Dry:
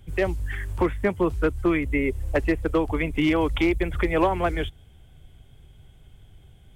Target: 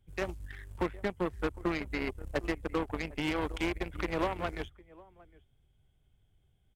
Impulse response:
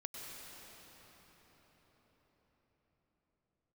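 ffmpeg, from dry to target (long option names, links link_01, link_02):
-filter_complex "[0:a]asplit=2[link_01][link_02];[link_02]adelay=758,volume=-15dB,highshelf=frequency=4000:gain=-17.1[link_03];[link_01][link_03]amix=inputs=2:normalize=0,aeval=exprs='0.266*(cos(1*acos(clip(val(0)/0.266,-1,1)))-cos(1*PI/2))+0.075*(cos(3*acos(clip(val(0)/0.266,-1,1)))-cos(3*PI/2))+0.00168*(cos(7*acos(clip(val(0)/0.266,-1,1)))-cos(7*PI/2))':channel_layout=same,alimiter=limit=-20.5dB:level=0:latency=1:release=29"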